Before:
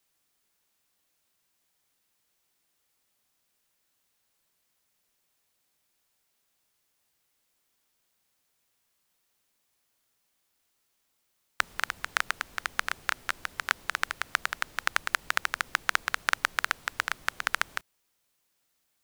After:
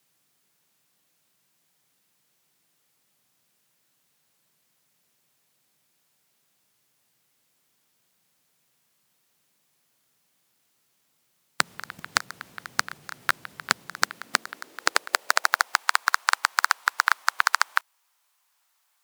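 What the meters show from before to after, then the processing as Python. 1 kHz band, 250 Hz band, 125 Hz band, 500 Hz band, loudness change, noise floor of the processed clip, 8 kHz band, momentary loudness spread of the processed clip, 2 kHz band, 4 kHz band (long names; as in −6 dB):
+7.0 dB, +6.5 dB, +4.0 dB, +6.0 dB, +5.0 dB, −71 dBFS, +8.0 dB, 8 LU, +4.0 dB, +5.5 dB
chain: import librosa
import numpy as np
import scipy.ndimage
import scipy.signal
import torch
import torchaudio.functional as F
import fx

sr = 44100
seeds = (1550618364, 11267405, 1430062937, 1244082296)

y = fx.fold_sine(x, sr, drive_db=13, ceiling_db=-1.0)
y = fx.filter_sweep_highpass(y, sr, from_hz=140.0, to_hz=950.0, start_s=13.76, end_s=15.88, q=2.2)
y = fx.level_steps(y, sr, step_db=17)
y = y * librosa.db_to_amplitude(-2.5)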